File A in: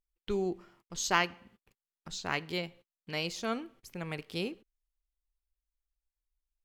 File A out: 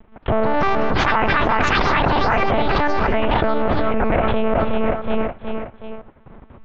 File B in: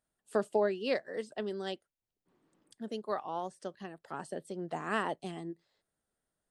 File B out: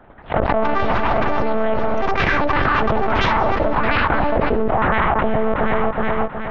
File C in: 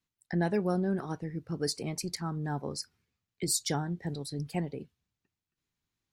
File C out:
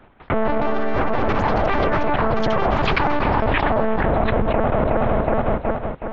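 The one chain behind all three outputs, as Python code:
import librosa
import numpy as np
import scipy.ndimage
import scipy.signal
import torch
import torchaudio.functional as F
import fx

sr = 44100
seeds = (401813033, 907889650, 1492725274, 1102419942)

p1 = fx.cycle_switch(x, sr, every=2, mode='inverted')
p2 = scipy.signal.sosfilt(scipy.signal.butter(2, 1700.0, 'lowpass', fs=sr, output='sos'), p1)
p3 = fx.peak_eq(p2, sr, hz=770.0, db=8.0, octaves=2.6)
p4 = fx.level_steps(p3, sr, step_db=21)
p5 = p3 + (p4 * 10.0 ** (1.5 / 20.0))
p6 = fx.lpc_monotone(p5, sr, seeds[0], pitch_hz=220.0, order=8)
p7 = p6 + fx.echo_feedback(p6, sr, ms=369, feedback_pct=48, wet_db=-19.0, dry=0)
p8 = fx.echo_pitch(p7, sr, ms=224, semitones=5, count=2, db_per_echo=-3.0)
p9 = fx.env_flatten(p8, sr, amount_pct=100)
y = p9 * 10.0 ** (-4.0 / 20.0)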